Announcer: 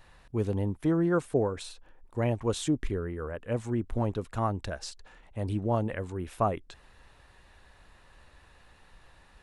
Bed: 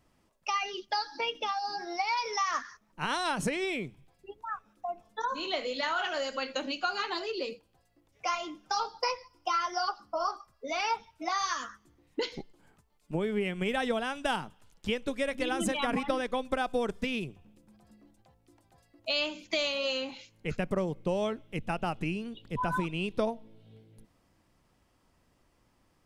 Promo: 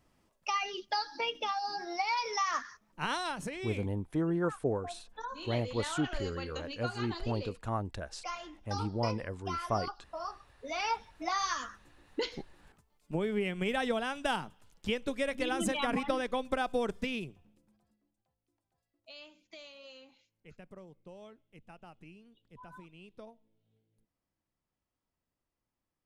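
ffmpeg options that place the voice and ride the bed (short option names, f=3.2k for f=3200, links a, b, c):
-filter_complex "[0:a]adelay=3300,volume=-5dB[a];[1:a]volume=5.5dB,afade=t=out:st=3.07:d=0.33:silence=0.446684,afade=t=in:st=10.43:d=0.53:silence=0.446684,afade=t=out:st=16.93:d=1.05:silence=0.112202[b];[a][b]amix=inputs=2:normalize=0"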